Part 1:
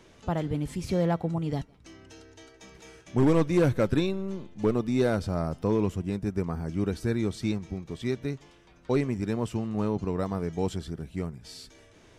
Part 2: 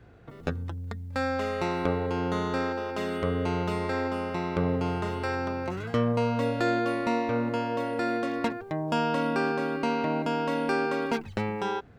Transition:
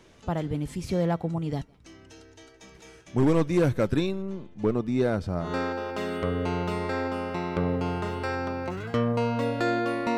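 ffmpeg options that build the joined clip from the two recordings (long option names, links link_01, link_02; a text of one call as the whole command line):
ffmpeg -i cue0.wav -i cue1.wav -filter_complex "[0:a]asettb=1/sr,asplit=3[link_01][link_02][link_03];[link_01]atrim=end=4.224[link_04];[link_02]atrim=start=4.22:end=5.54,asetpts=PTS-STARTPTS,afade=type=in:duration=0.004:curve=qsin,afade=type=out:start_time=1.316:duration=0.004:curve=qsin,highshelf=frequency=4500:gain=-9[link_05];[link_03]atrim=start=5.536[link_06];[link_04][link_05]acrossfade=duration=0.004:curve1=hsin:curve2=qsin[link_07];[link_07][link_06]acrossfade=duration=0.004:curve1=qsin:curve2=hsin,apad=whole_dur=10.17,atrim=end=10.17,atrim=end=5.54,asetpts=PTS-STARTPTS[link_08];[1:a]atrim=start=2.38:end=7.17,asetpts=PTS-STARTPTS[link_09];[link_08][link_09]acrossfade=duration=0.16:curve1=tri:curve2=tri" out.wav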